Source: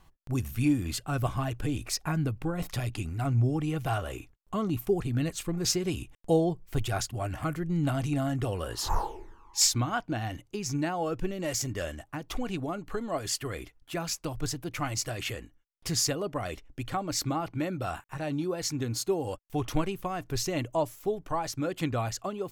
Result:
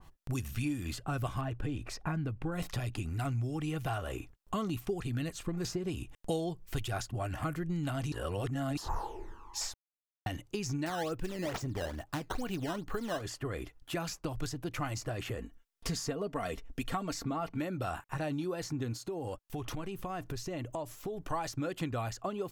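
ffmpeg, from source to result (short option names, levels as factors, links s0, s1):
-filter_complex "[0:a]asettb=1/sr,asplit=3[s0][s1][s2];[s0]atrim=end=1.414[s3];[s1]atrim=start=1.41:end=2.52,asetpts=PTS-STARTPTS,afade=t=in:d=0.004:c=qsin,afade=t=out:st=1.106:d=0.004:c=qsin,lowpass=f=1400:p=1[s4];[s2]atrim=start=2.516[s5];[s3][s4]acrossfade=d=0.004:c1=hsin:c2=qsin[s6];[s6][s5]acrossfade=d=0.004:c1=qsin:c2=hsin,asettb=1/sr,asplit=3[s7][s8][s9];[s7]atrim=end=10.864[s10];[s8]atrim=start=10.86:end=13.22,asetpts=PTS-STARTPTS,afade=t=in:d=0.004:c=qsin,afade=t=out:st=2.356:d=0.004:c=qsin,acrusher=samples=11:mix=1:aa=0.000001:lfo=1:lforange=17.6:lforate=2.3[s11];[s9]atrim=start=13.216[s12];[s10][s11]acrossfade=d=0.004:c1=hsin:c2=qsin[s13];[s13][s12]acrossfade=d=0.004:c1=qsin:c2=hsin,asettb=1/sr,asplit=3[s14][s15][s16];[s14]atrim=end=15.384[s17];[s15]atrim=start=15.38:end=17.6,asetpts=PTS-STARTPTS,afade=t=in:d=0.004:c=qsin,afade=t=out:st=2.216:d=0.004:c=qsin,aecho=1:1:4.4:0.57,atrim=end_sample=97902[s18];[s16]atrim=start=17.596[s19];[s17][s18]acrossfade=d=0.004:c1=hsin:c2=qsin[s20];[s20][s19]acrossfade=d=0.004:c1=qsin:c2=hsin,asettb=1/sr,asplit=3[s21][s22][s23];[s21]atrim=end=18.934[s24];[s22]atrim=start=18.93:end=21.3,asetpts=PTS-STARTPTS,afade=t=in:d=0.004:c=qsin,afade=t=out:st=2.366:d=0.004:c=qsin,acompressor=threshold=0.0141:ratio=5:attack=3.2:release=140:knee=1:detection=peak[s25];[s23]atrim=start=21.296[s26];[s24][s25]acrossfade=d=0.004:c1=hsin:c2=qsin[s27];[s27][s26]acrossfade=d=0.004:c1=qsin:c2=hsin,asplit=5[s28][s29][s30][s31][s32];[s28]atrim=end=8.122[s33];[s29]atrim=start=8.118:end=8.772,asetpts=PTS-STARTPTS,areverse[s34];[s30]atrim=start=8.768:end=9.74,asetpts=PTS-STARTPTS,afade=t=out:st=0.968:d=0.004:c=hsin[s35];[s31]atrim=start=9.74:end=10.26,asetpts=PTS-STARTPTS,volume=0[s36];[s32]atrim=start=10.26,asetpts=PTS-STARTPTS,afade=t=in:d=0.004:c=hsin[s37];[s33][s34]acrossfade=d=0.004:c1=hsin:c2=hsin[s38];[s35][s36][s37]concat=n=3:v=0:a=1[s39];[s38][s39]acrossfade=d=0.004:c1=hsin:c2=hsin,bandreject=f=2200:w=21,acrossover=split=1600|7700[s40][s41][s42];[s40]acompressor=threshold=0.0141:ratio=4[s43];[s41]acompressor=threshold=0.00562:ratio=4[s44];[s42]acompressor=threshold=0.00178:ratio=4[s45];[s43][s44][s45]amix=inputs=3:normalize=0,adynamicequalizer=threshold=0.002:dfrequency=1900:dqfactor=0.7:tfrequency=1900:tqfactor=0.7:attack=5:release=100:ratio=0.375:range=3:mode=cutabove:tftype=highshelf,volume=1.5"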